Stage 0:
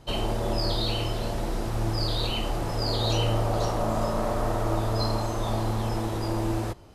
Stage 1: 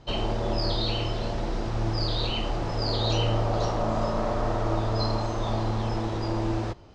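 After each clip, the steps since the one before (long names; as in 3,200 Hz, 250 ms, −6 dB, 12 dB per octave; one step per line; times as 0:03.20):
low-pass filter 6,100 Hz 24 dB per octave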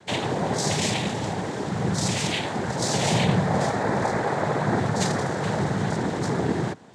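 cochlear-implant simulation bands 6
level +4 dB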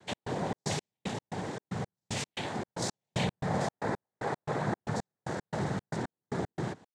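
gate pattern "x.xx.x.." 114 BPM −60 dB
level −7.5 dB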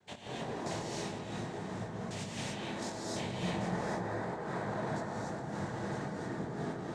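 feedback echo with a low-pass in the loop 139 ms, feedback 84%, low-pass 2,100 Hz, level −5.5 dB
chorus effect 1.8 Hz, delay 20 ms, depth 4.5 ms
reverb whose tail is shaped and stops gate 320 ms rising, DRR −4 dB
level −6.5 dB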